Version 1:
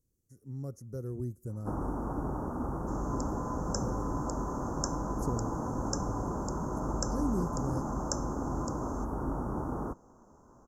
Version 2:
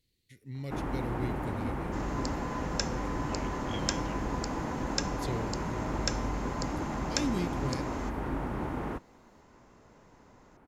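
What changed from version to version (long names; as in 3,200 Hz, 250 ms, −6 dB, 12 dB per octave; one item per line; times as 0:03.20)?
first sound: entry −0.95 s
second sound: entry −0.95 s
master: remove elliptic band-stop filter 1,300–6,000 Hz, stop band 50 dB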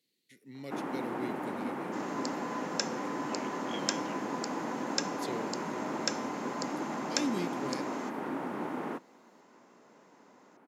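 master: add high-pass filter 200 Hz 24 dB per octave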